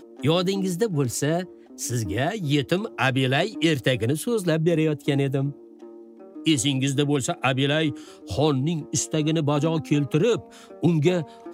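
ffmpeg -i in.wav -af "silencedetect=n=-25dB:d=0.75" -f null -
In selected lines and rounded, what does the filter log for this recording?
silence_start: 5.50
silence_end: 6.47 | silence_duration: 0.97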